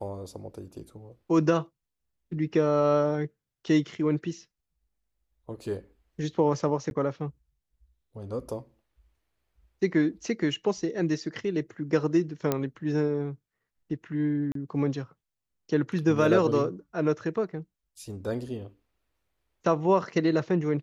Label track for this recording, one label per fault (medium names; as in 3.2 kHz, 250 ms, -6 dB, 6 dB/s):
6.900000	6.910000	dropout 11 ms
12.520000	12.520000	pop -11 dBFS
14.520000	14.550000	dropout 33 ms